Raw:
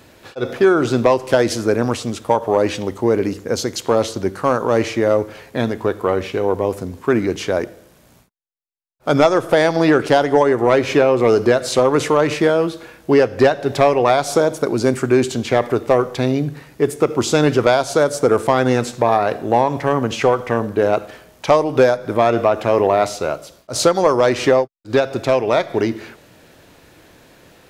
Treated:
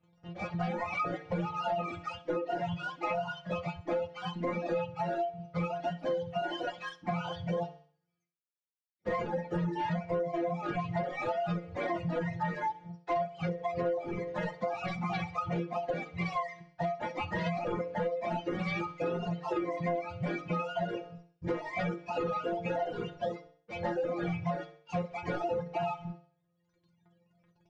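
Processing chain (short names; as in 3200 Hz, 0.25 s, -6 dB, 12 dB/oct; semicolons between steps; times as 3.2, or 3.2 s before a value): spectrum mirrored in octaves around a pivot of 540 Hz; sample leveller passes 3; LPF 6400 Hz 24 dB/oct; metallic resonator 170 Hz, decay 0.34 s, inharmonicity 0.002; on a send: thinning echo 64 ms, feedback 40%, high-pass 260 Hz, level -8.5 dB; on the sum: reverb removal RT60 1.2 s; notch 1100 Hz, Q 14; de-hum 150.9 Hz, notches 3; compressor 8:1, threshold -26 dBFS, peak gain reduction 17.5 dB; gain -3.5 dB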